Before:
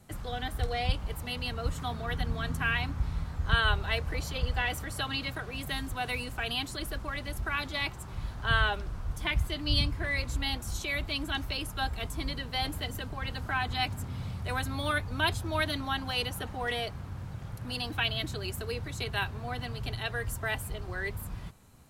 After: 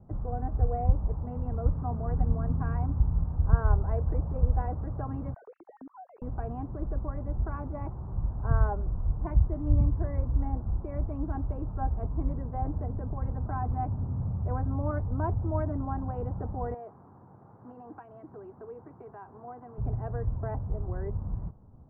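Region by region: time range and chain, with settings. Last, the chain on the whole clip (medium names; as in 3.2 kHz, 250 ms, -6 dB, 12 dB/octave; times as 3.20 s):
5.34–6.22 s: formants replaced by sine waves + compression 5:1, threshold -45 dBFS
16.74–19.78 s: compression, threshold -32 dBFS + high-pass 390 Hz + peaking EQ 570 Hz -8 dB 0.4 oct
whole clip: inverse Chebyshev low-pass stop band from 3.3 kHz, stop band 60 dB; bass shelf 220 Hz +7 dB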